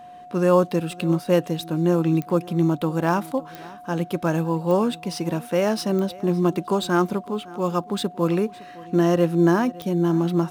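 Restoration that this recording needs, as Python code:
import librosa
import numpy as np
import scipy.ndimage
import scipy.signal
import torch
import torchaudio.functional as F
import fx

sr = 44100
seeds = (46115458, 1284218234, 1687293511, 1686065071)

y = fx.fix_declick_ar(x, sr, threshold=10.0)
y = fx.notch(y, sr, hz=720.0, q=30.0)
y = fx.fix_echo_inverse(y, sr, delay_ms=561, level_db=-21.0)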